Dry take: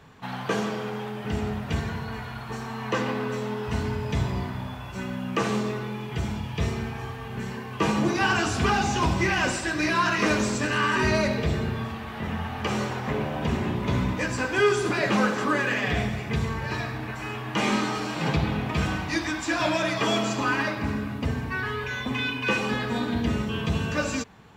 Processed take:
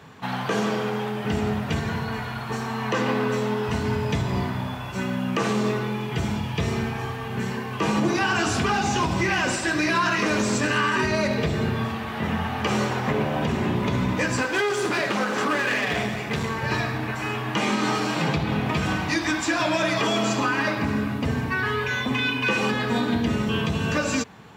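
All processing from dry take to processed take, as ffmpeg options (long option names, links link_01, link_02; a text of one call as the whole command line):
ffmpeg -i in.wav -filter_complex "[0:a]asettb=1/sr,asplit=3[link_01][link_02][link_03];[link_01]atrim=end=14.424[link_04];[link_02]atrim=start=14.42:end=16.63,asetpts=PTS-STARTPTS,afade=type=in:duration=0.004:curve=qsin,afade=type=out:start_time=2.206:duration=0.004:curve=qsin,aeval=exprs='clip(val(0),-1,0.0473)':channel_layout=same,lowshelf=frequency=140:gain=-10[link_05];[link_03]atrim=start=16.626[link_06];[link_04][link_05]acrossfade=duration=0.004:curve1=hsin:curve2=qsin[link_07];[link_07][link_06]acrossfade=duration=0.004:curve1=qsin:curve2=hsin,alimiter=limit=-19dB:level=0:latency=1:release=138,highpass=93,volume=5.5dB" out.wav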